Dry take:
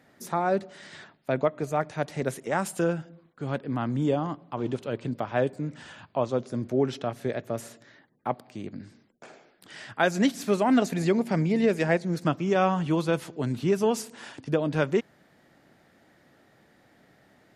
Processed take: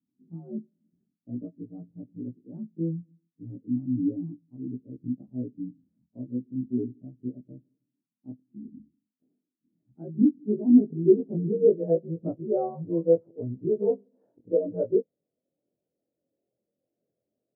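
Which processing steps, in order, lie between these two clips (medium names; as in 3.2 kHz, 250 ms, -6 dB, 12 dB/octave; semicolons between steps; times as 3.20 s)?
short-time spectra conjugated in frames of 48 ms; low-pass sweep 260 Hz -> 520 Hz, 9.80–12.30 s; spectral contrast expander 1.5:1; trim +1 dB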